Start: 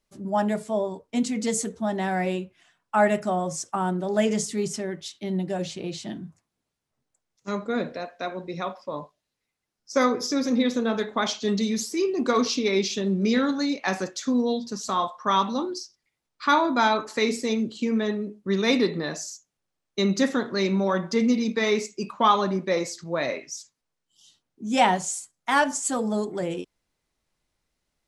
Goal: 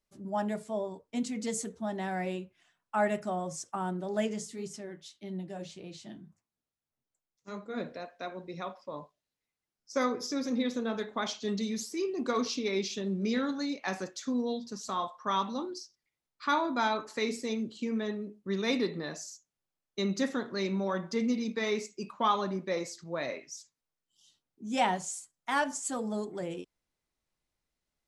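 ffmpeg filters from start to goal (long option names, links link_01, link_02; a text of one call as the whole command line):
ffmpeg -i in.wav -filter_complex "[0:a]asplit=3[link_01][link_02][link_03];[link_01]afade=type=out:start_time=4.26:duration=0.02[link_04];[link_02]flanger=delay=9.7:depth=5.2:regen=-50:speed=1.7:shape=sinusoidal,afade=type=in:start_time=4.26:duration=0.02,afade=type=out:start_time=7.76:duration=0.02[link_05];[link_03]afade=type=in:start_time=7.76:duration=0.02[link_06];[link_04][link_05][link_06]amix=inputs=3:normalize=0,volume=-8dB" out.wav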